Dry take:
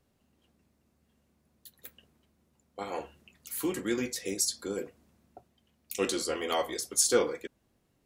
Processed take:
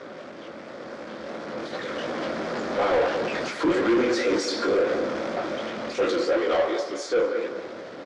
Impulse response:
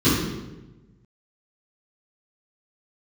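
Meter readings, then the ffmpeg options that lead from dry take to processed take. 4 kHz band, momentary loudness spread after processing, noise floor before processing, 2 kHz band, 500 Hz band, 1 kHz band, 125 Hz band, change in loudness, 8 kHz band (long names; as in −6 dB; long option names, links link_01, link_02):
+3.5 dB, 16 LU, −73 dBFS, +11.0 dB, +10.5 dB, +10.5 dB, +7.0 dB, +5.5 dB, −10.0 dB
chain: -filter_complex "[0:a]aeval=exprs='val(0)+0.5*0.0355*sgn(val(0))':channel_layout=same,highpass=300,equalizer=frequency=330:width_type=q:width=4:gain=5,equalizer=frequency=550:width_type=q:width=4:gain=10,equalizer=frequency=900:width_type=q:width=4:gain=-3,equalizer=frequency=1400:width_type=q:width=4:gain=5,equalizer=frequency=2800:width_type=q:width=4:gain=-9,equalizer=frequency=4000:width_type=q:width=4:gain=-5,lowpass=frequency=4300:width=0.5412,lowpass=frequency=4300:width=1.3066,flanger=delay=16.5:depth=7.9:speed=2.8,dynaudnorm=framelen=320:gausssize=11:maxgain=13.5dB,bandreject=frequency=60:width_type=h:width=6,bandreject=frequency=120:width_type=h:width=6,bandreject=frequency=180:width_type=h:width=6,bandreject=frequency=240:width_type=h:width=6,bandreject=frequency=300:width_type=h:width=6,bandreject=frequency=360:width_type=h:width=6,bandreject=frequency=420:width_type=h:width=6,bandreject=frequency=480:width_type=h:width=6,bandreject=frequency=540:width_type=h:width=6,asplit=2[link_01][link_02];[link_02]adelay=202,lowpass=frequency=2500:poles=1,volume=-10.5dB,asplit=2[link_03][link_04];[link_04]adelay=202,lowpass=frequency=2500:poles=1,volume=0.34,asplit=2[link_05][link_06];[link_06]adelay=202,lowpass=frequency=2500:poles=1,volume=0.34,asplit=2[link_07][link_08];[link_08]adelay=202,lowpass=frequency=2500:poles=1,volume=0.34[link_09];[link_03][link_05][link_07][link_09]amix=inputs=4:normalize=0[link_10];[link_01][link_10]amix=inputs=2:normalize=0,asoftclip=type=tanh:threshold=-16.5dB" -ar 24000 -c:a aac -b:a 48k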